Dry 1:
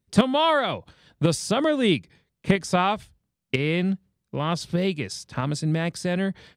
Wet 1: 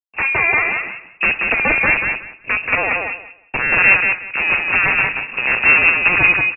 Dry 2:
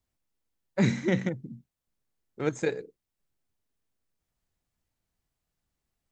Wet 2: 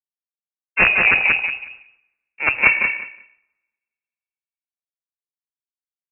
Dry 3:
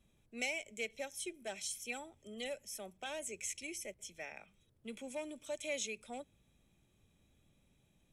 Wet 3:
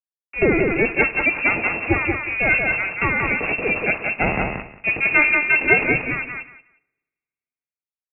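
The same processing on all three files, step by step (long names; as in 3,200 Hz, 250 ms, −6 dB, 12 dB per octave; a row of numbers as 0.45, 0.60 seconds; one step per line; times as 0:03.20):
lower of the sound and its delayed copy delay 0.46 ms
speech leveller within 3 dB 0.5 s
treble cut that deepens with the level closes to 1,600 Hz, closed at −26 dBFS
transient designer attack 0 dB, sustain +4 dB
bit reduction 9 bits
pitch vibrato 0.51 Hz 51 cents
wrap-around overflow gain 19 dB
repeating echo 182 ms, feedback 24%, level −3 dB
coupled-rooms reverb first 0.54 s, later 2.1 s, from −21 dB, DRR 13 dB
voice inversion scrambler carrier 2,700 Hz
multiband upward and downward expander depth 40%
normalise the peak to −1.5 dBFS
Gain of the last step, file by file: +9.0, +11.5, +23.5 decibels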